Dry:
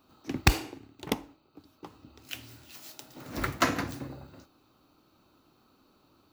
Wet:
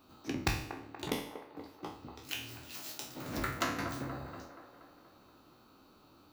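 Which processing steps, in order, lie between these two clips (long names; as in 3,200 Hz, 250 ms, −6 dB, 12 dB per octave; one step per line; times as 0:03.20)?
peak hold with a decay on every bin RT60 0.43 s
downward compressor 2.5 to 1, threshold −37 dBFS, peak gain reduction 15.5 dB
delay with a band-pass on its return 238 ms, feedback 58%, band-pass 780 Hz, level −7.5 dB
level +1 dB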